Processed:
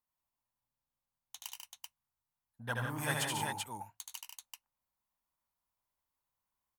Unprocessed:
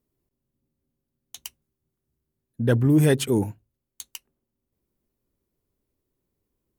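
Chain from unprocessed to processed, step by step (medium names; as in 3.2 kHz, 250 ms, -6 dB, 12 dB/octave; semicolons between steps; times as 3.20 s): resonant low shelf 590 Hz -14 dB, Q 3; multi-tap echo 76/94/142/174/385 ms -3.5/-10/-6.5/-7.5/-3.5 dB; trim -8.5 dB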